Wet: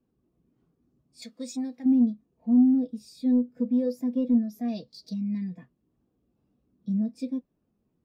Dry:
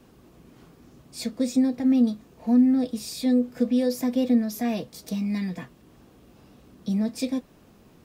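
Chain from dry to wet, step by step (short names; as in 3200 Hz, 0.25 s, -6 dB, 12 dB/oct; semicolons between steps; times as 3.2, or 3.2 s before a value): 4.68–5.14 bell 4500 Hz +14 dB 0.68 oct; soft clip -14.5 dBFS, distortion -19 dB; 1.22–1.86 tilt shelf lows -8.5 dB, about 690 Hz; spectral expander 1.5:1; gain +2.5 dB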